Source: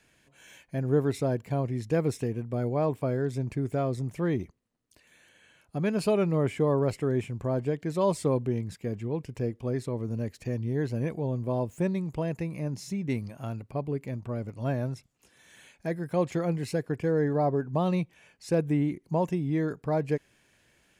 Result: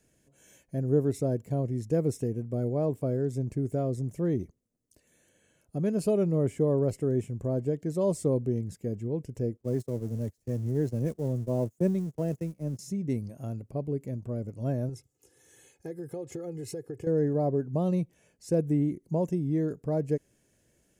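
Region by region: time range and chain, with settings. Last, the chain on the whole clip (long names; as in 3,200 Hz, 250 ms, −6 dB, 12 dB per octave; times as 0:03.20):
0:09.57–0:12.79: converter with a step at zero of −38.5 dBFS + noise gate −33 dBFS, range −28 dB + multiband upward and downward expander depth 70%
0:14.89–0:17.07: comb filter 2.4 ms, depth 82% + downward compressor, threshold −33 dBFS + high-pass filter 82 Hz
whole clip: flat-topped bell 1,900 Hz −11.5 dB 2.8 octaves; notch filter 2,400 Hz, Q 20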